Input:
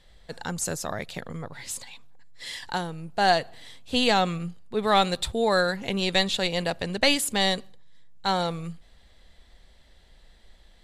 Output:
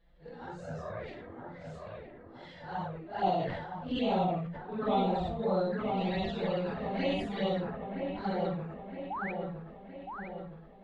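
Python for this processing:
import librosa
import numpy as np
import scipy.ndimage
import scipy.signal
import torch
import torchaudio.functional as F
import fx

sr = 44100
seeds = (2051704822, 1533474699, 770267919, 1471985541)

p1 = fx.phase_scramble(x, sr, seeds[0], window_ms=200)
p2 = fx.highpass(p1, sr, hz=47.0, slope=6)
p3 = 10.0 ** (-16.0 / 20.0) * np.tanh(p2 / 10.0 ** (-16.0 / 20.0))
p4 = p2 + F.gain(torch.from_numpy(p3), -5.0).numpy()
p5 = fx.env_flanger(p4, sr, rest_ms=6.1, full_db=-16.5)
p6 = fx.spec_paint(p5, sr, seeds[1], shape='rise', start_s=9.1, length_s=0.22, low_hz=710.0, high_hz=2600.0, level_db=-26.0)
p7 = fx.spacing_loss(p6, sr, db_at_10k=41)
p8 = p7 + fx.echo_wet_lowpass(p7, sr, ms=966, feedback_pct=54, hz=1700.0, wet_db=-4.5, dry=0)
p9 = fx.sustainer(p8, sr, db_per_s=45.0)
y = F.gain(torch.from_numpy(p9), -6.0).numpy()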